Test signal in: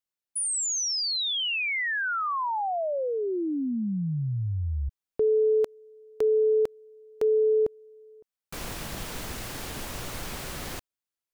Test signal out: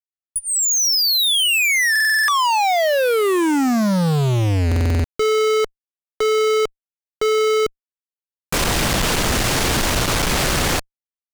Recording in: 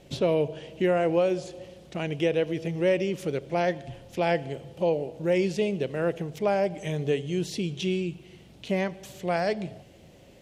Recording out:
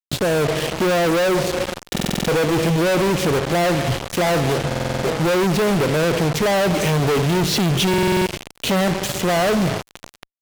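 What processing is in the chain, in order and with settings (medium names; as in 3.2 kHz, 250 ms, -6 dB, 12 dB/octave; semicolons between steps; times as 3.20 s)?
low-pass that closes with the level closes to 1.9 kHz, closed at -21.5 dBFS; level rider gain up to 13 dB; fuzz box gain 42 dB, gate -32 dBFS; buffer glitch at 1.91/4.67/7.89 s, samples 2048, times 7; trim -3 dB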